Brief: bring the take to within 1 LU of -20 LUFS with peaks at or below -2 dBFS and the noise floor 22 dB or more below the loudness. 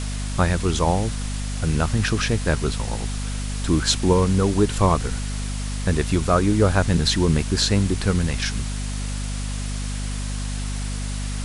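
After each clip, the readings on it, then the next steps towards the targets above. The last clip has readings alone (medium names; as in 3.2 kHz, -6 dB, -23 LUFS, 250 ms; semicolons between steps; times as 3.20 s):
hum 50 Hz; highest harmonic 250 Hz; hum level -24 dBFS; noise floor -27 dBFS; noise floor target -45 dBFS; loudness -22.5 LUFS; peak level -4.5 dBFS; loudness target -20.0 LUFS
-> hum notches 50/100/150/200/250 Hz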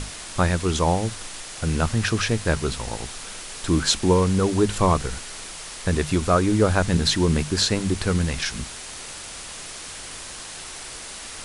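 hum not found; noise floor -37 dBFS; noise floor target -45 dBFS
-> noise print and reduce 8 dB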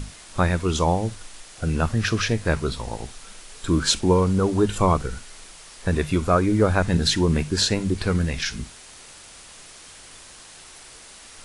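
noise floor -45 dBFS; loudness -22.5 LUFS; peak level -5.5 dBFS; loudness target -20.0 LUFS
-> trim +2.5 dB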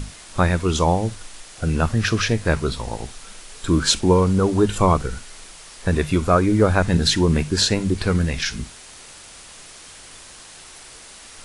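loudness -20.0 LUFS; peak level -3.0 dBFS; noise floor -43 dBFS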